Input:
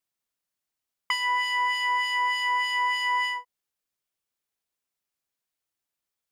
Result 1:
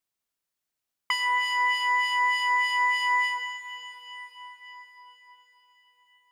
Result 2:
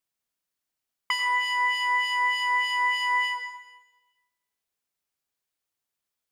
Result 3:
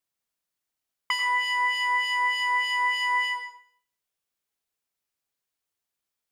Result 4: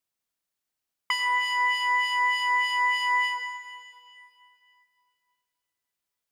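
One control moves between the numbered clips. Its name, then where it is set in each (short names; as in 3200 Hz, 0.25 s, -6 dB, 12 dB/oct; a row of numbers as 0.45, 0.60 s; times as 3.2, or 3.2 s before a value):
plate-style reverb, RT60: 5.3, 1.1, 0.53, 2.5 s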